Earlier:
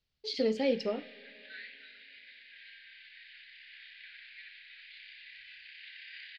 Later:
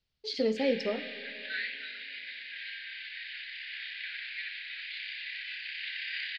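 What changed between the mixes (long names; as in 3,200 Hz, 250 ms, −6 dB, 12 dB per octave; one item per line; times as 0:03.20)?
speech: send +8.5 dB
background +11.5 dB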